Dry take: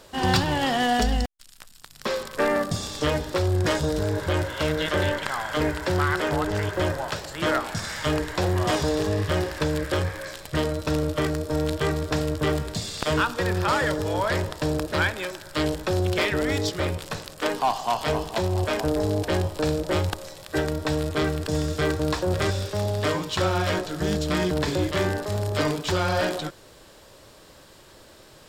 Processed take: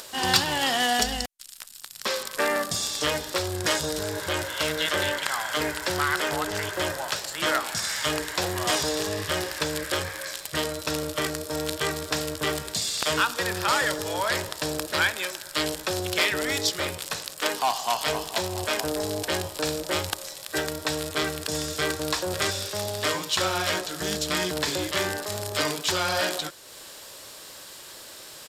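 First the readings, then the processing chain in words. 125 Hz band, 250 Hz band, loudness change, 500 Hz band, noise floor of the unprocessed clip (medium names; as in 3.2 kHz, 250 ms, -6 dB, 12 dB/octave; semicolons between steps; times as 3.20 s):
-10.5 dB, -6.5 dB, -1.0 dB, -4.0 dB, -50 dBFS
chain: tilt EQ +3 dB/octave; upward compressor, threshold -35 dBFS; resampled via 32 kHz; trim -1 dB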